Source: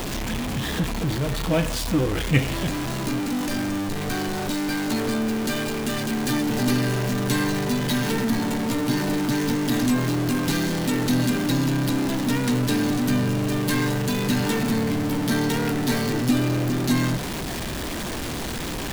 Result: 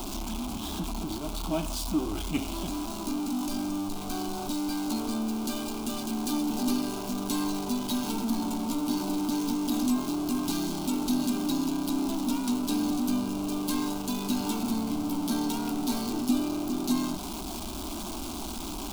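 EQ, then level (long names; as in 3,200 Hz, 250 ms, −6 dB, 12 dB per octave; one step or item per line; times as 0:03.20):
phaser with its sweep stopped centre 490 Hz, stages 6
−4.0 dB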